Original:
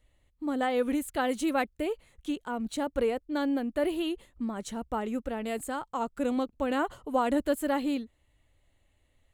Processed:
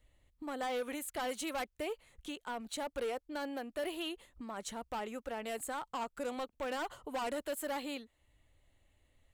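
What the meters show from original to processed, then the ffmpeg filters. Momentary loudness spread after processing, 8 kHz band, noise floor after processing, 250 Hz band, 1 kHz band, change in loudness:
7 LU, −1.5 dB, −76 dBFS, −13.5 dB, −7.0 dB, −9.0 dB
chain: -filter_complex "[0:a]acrossover=split=500|4600[link_01][link_02][link_03];[link_01]acompressor=threshold=-46dB:ratio=6[link_04];[link_02]asoftclip=type=hard:threshold=-33.5dB[link_05];[link_04][link_05][link_03]amix=inputs=3:normalize=0,volume=-1.5dB"

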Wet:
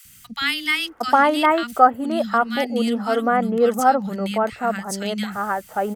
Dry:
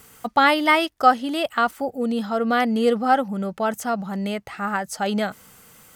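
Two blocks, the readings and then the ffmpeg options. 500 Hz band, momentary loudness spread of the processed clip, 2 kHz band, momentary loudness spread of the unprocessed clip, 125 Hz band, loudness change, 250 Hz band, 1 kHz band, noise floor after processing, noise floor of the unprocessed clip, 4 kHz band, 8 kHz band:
+2.5 dB, 9 LU, +0.5 dB, 10 LU, can't be measured, +1.5 dB, +0.5 dB, +2.0 dB, −48 dBFS, −53 dBFS, +2.5 dB, +3.0 dB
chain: -filter_complex "[0:a]acrossover=split=220|1800[link_01][link_02][link_03];[link_01]adelay=50[link_04];[link_02]adelay=760[link_05];[link_04][link_05][link_03]amix=inputs=3:normalize=0,volume=3dB"

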